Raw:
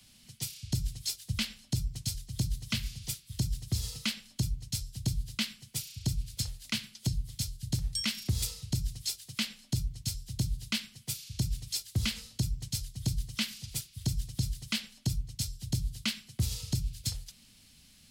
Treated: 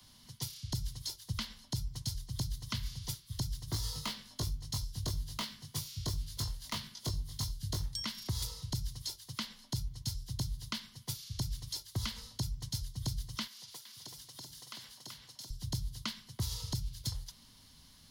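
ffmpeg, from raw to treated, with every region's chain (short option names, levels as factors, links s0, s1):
-filter_complex "[0:a]asettb=1/sr,asplit=3[s0][s1][s2];[s0]atrim=end=3.664[s3];[s1]atrim=start=3.66:end=7.86,asetpts=PTS-STARTPTS,afade=t=in:d=0.004:c=qsin,afade=t=out:st=4.196:d=0.004:c=qsin,aeval=exprs='0.0596*(abs(mod(val(0)/0.0596+3,4)-2)-1)':c=same,asplit=2[s4][s5];[s5]adelay=20,volume=0.794[s6];[s4][s6]amix=inputs=2:normalize=0,atrim=end_sample=185220,aecho=1:1:70:0.0841,atrim=end_sample=185220[s7];[s2]atrim=start=7.856[s8];[s3][s7]acrossfade=d=0.004:c1=hsin:c2=qsin[s9];[s9][s8]acrossfade=d=0.004:c1=qsin:c2=hsin,asettb=1/sr,asplit=3[s10][s11][s12];[s10]atrim=end=13.474[s13];[s11]atrim=start=13.47:end=15.5,asetpts=PTS-STARTPTS,afade=t=in:d=0.004:c=qsin,afade=t=out:st=2.026:d=0.004:c=qsin,highpass=390,acompressor=threshold=0.00562:ratio=4:attack=3.2:release=140:knee=1:detection=peak,aecho=1:1:381:0.631,atrim=end_sample=89523[s14];[s12]atrim=start=15.496[s15];[s13][s14]acrossfade=d=0.004:c1=hsin:c2=qsin[s16];[s16][s15]acrossfade=d=0.004:c1=qsin:c2=hsin,equalizer=f=200:t=o:w=0.33:g=-5,equalizer=f=1000:t=o:w=0.33:g=12,equalizer=f=2500:t=o:w=0.33:g=-11,equalizer=f=8000:t=o:w=0.33:g=-10,equalizer=f=12500:t=o:w=0.33:g=-4,acrossover=split=130|820[s17][s18][s19];[s17]acompressor=threshold=0.0141:ratio=4[s20];[s18]acompressor=threshold=0.00501:ratio=4[s21];[s19]acompressor=threshold=0.0112:ratio=4[s22];[s20][s21][s22]amix=inputs=3:normalize=0,volume=1.19"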